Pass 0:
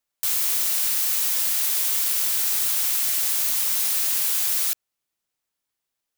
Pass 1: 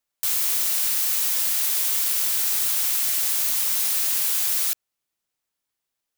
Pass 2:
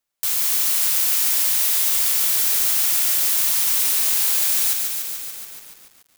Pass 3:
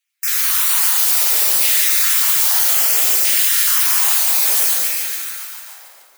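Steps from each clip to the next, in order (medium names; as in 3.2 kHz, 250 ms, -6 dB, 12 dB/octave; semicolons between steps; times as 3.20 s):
no audible change
bit-crushed delay 144 ms, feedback 80%, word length 7-bit, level -5 dB; trim +1.5 dB
random holes in the spectrogram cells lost 22%; LFO high-pass saw down 0.62 Hz 300–2400 Hz; plate-style reverb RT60 2.1 s, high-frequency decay 0.55×, DRR -1.5 dB; trim +2.5 dB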